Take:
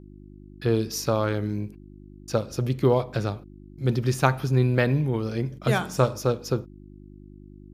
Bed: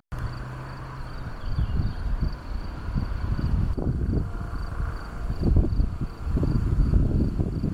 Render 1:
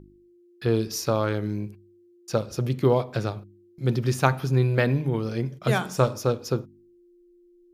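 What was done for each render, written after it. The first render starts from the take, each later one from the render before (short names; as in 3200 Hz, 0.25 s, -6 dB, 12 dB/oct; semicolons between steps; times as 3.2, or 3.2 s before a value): de-hum 50 Hz, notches 6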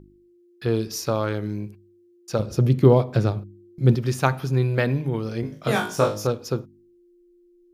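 2.39–3.95 low shelf 480 Hz +8.5 dB; 5.41–6.27 flutter echo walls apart 3.3 m, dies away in 0.33 s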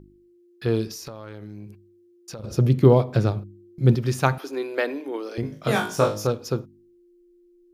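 0.91–2.44 compressor, threshold -34 dBFS; 4.38–5.38 elliptic high-pass 280 Hz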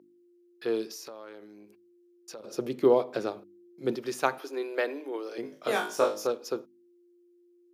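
ladder high-pass 260 Hz, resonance 20%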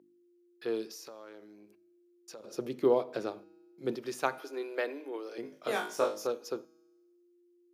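resonator 160 Hz, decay 1.2 s, mix 40%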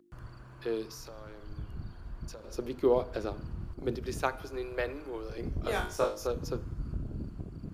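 add bed -15.5 dB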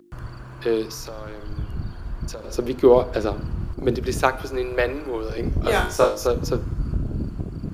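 gain +11.5 dB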